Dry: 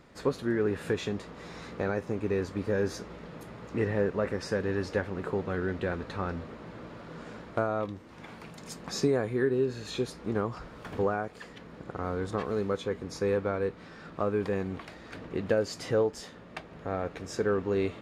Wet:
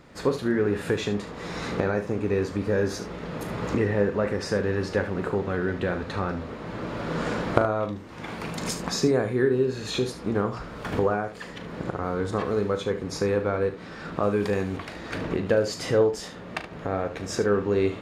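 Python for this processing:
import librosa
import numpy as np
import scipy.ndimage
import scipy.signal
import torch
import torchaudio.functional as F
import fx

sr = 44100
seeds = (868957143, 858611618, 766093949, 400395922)

y = fx.recorder_agc(x, sr, target_db=-22.0, rise_db_per_s=13.0, max_gain_db=30)
y = fx.high_shelf(y, sr, hz=3800.0, db=9.0, at=(14.23, 14.77))
y = fx.room_early_taps(y, sr, ms=(39, 73), db=(-11.0, -12.0))
y = y * 10.0 ** (4.0 / 20.0)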